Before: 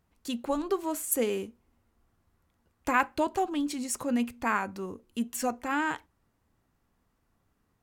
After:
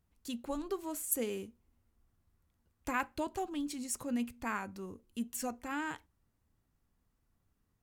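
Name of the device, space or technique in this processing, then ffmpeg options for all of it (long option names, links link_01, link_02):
smiley-face EQ: -af "lowshelf=frequency=130:gain=6.5,equalizer=frequency=820:width_type=o:width=2.7:gain=-3,highshelf=frequency=6600:gain=4,volume=-7dB"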